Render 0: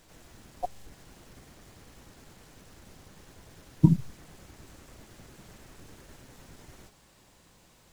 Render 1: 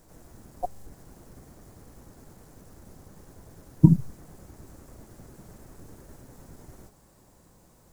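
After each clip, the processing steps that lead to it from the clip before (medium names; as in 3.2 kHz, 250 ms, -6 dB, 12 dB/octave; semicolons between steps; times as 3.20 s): peaking EQ 3 kHz -14.5 dB 1.9 oct; trim +4 dB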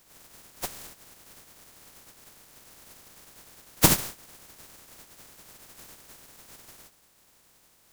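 spectral contrast reduction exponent 0.24; trim -3.5 dB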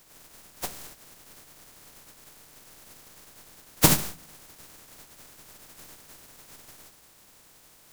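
reverse; upward compressor, threshold -48 dBFS; reverse; reverberation RT60 0.40 s, pre-delay 7 ms, DRR 12.5 dB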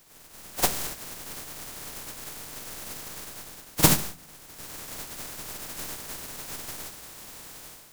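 level rider gain up to 12.5 dB; pre-echo 48 ms -13 dB; trim -1 dB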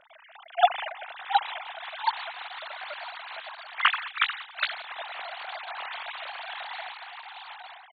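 formants replaced by sine waves; ever faster or slower copies 786 ms, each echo +2 st, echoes 2; trim -1.5 dB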